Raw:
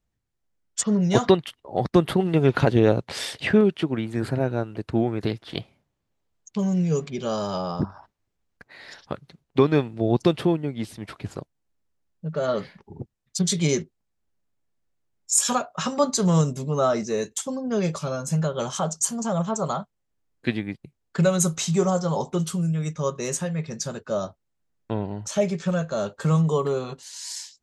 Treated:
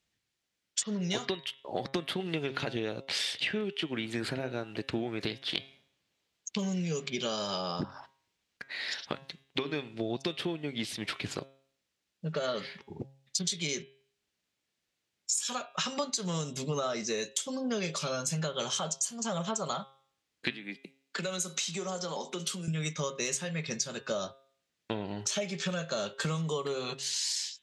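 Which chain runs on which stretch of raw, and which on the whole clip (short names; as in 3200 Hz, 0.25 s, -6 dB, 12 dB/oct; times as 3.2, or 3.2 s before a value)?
20.5–22.68 steep high-pass 180 Hz 48 dB/oct + compressor 2.5:1, threshold -36 dBFS
whole clip: weighting filter D; compressor 12:1, threshold -29 dBFS; de-hum 135.3 Hz, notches 29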